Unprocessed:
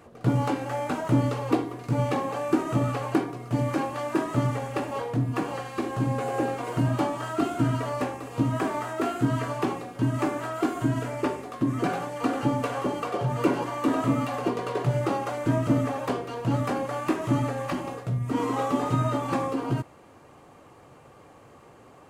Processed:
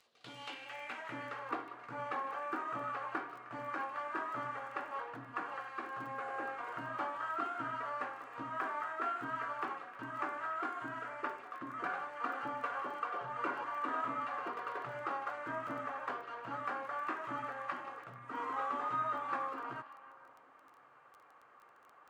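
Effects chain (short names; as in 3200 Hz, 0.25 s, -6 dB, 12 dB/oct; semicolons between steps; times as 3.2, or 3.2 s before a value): delay with a stepping band-pass 0.154 s, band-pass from 3600 Hz, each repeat -0.7 oct, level -10 dB; band-pass sweep 4200 Hz -> 1400 Hz, 0.04–1.54; crackle 14/s -47 dBFS; gain -1.5 dB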